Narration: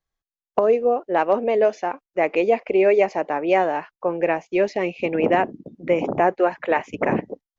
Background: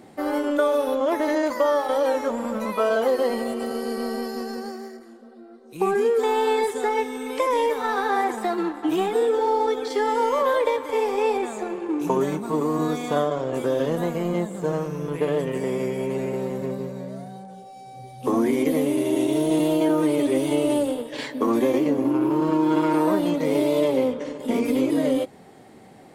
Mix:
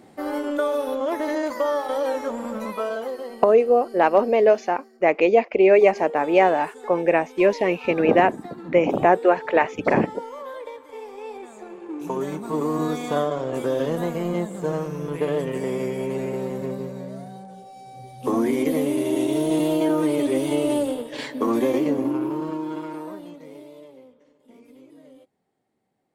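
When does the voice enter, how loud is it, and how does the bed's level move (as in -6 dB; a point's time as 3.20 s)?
2.85 s, +2.0 dB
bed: 2.66 s -2.5 dB
3.44 s -14.5 dB
11.21 s -14.5 dB
12.64 s -0.5 dB
21.96 s -0.5 dB
24.08 s -27.5 dB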